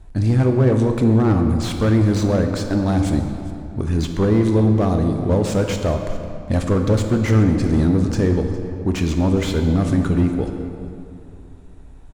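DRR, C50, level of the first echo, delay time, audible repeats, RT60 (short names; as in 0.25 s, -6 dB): 4.5 dB, 5.5 dB, -19.5 dB, 0.409 s, 1, 2.6 s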